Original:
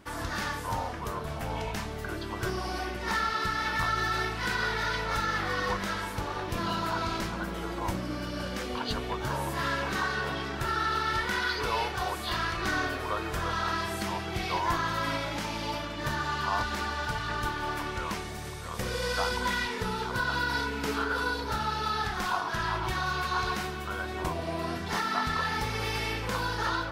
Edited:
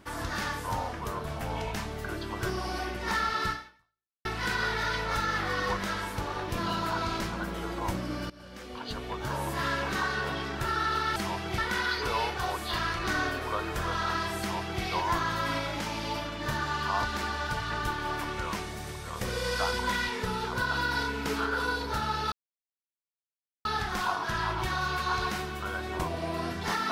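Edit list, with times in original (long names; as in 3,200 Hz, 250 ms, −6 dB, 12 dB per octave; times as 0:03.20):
0:03.51–0:04.25: fade out exponential
0:08.30–0:09.50: fade in linear, from −19 dB
0:13.98–0:14.40: duplicate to 0:11.16
0:21.90: splice in silence 1.33 s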